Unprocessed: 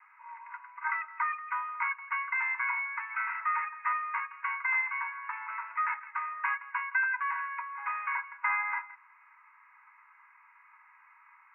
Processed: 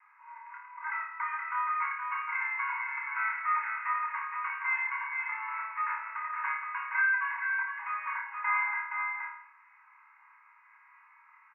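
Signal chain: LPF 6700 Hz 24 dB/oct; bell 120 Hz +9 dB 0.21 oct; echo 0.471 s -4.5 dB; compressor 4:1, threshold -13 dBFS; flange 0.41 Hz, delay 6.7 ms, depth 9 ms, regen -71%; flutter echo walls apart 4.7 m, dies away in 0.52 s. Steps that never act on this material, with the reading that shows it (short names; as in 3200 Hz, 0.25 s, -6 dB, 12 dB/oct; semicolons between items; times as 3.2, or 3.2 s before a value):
LPF 6700 Hz: input band ends at 2700 Hz; bell 120 Hz: input band starts at 810 Hz; compressor, threshold -13 dBFS: input peak -16.0 dBFS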